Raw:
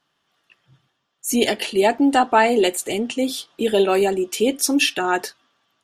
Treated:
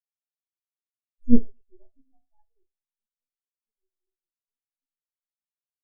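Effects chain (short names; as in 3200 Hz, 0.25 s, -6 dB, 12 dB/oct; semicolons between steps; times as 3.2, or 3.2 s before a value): Doppler pass-by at 1.32, 15 m/s, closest 2 m; in parallel at +2 dB: compressor, threshold -35 dBFS, peak gain reduction 19.5 dB; on the sum: reverse bouncing-ball echo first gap 50 ms, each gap 1.5×, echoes 5; half-wave rectifier; spectral expander 4:1; gain +2 dB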